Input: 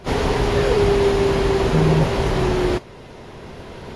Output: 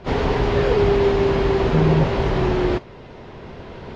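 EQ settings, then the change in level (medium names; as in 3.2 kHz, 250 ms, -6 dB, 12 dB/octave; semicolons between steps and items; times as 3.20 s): distance through air 140 m; 0.0 dB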